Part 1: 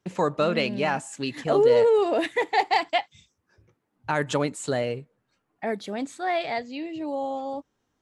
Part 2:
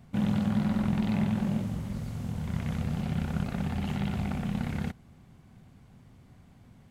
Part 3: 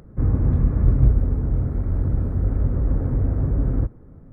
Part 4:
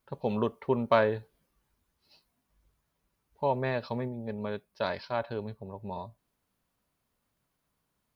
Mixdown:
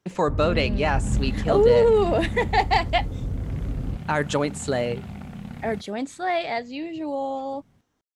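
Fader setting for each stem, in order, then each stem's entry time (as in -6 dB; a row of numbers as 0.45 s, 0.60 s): +1.5 dB, -5.5 dB, -8.5 dB, mute; 0.00 s, 0.90 s, 0.10 s, mute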